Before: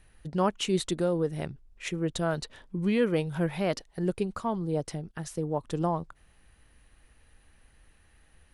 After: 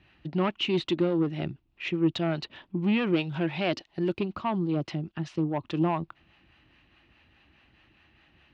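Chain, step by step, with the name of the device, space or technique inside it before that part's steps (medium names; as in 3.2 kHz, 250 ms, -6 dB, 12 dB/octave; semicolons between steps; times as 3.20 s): 3.12–4.19 s: tone controls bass -3 dB, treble +7 dB; guitar amplifier with harmonic tremolo (harmonic tremolo 4.8 Hz, depth 50%, crossover 500 Hz; saturation -24.5 dBFS, distortion -14 dB; cabinet simulation 100–4200 Hz, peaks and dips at 330 Hz +7 dB, 470 Hz -10 dB, 1.6 kHz -3 dB, 2.7 kHz +7 dB); trim +6 dB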